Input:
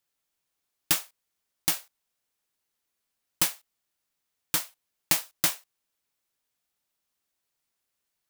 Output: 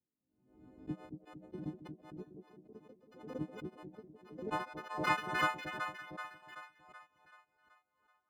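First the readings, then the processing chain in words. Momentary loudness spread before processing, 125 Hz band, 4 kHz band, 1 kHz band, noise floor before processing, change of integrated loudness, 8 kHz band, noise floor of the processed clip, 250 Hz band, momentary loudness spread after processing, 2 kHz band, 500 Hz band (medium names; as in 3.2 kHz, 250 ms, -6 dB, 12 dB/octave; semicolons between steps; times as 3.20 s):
10 LU, -0.5 dB, -14.5 dB, +4.5 dB, -82 dBFS, -12.5 dB, -28.0 dB, -84 dBFS, +2.0 dB, 24 LU, -0.5 dB, +4.0 dB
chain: partials quantised in pitch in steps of 3 st; reverb removal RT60 0.8 s; high-pass 51 Hz; peaking EQ 5.5 kHz -14 dB 0.2 oct; compression 2:1, threshold -19 dBFS, peak gain reduction 7.5 dB; low-pass sweep 260 Hz -> 1.2 kHz, 3.39–4.93 s; two-band feedback delay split 580 Hz, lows 228 ms, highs 380 ms, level -7.5 dB; ever faster or slower copies 787 ms, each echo +3 st, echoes 3, each echo -6 dB; swell ahead of each attack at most 81 dB/s; trim +2.5 dB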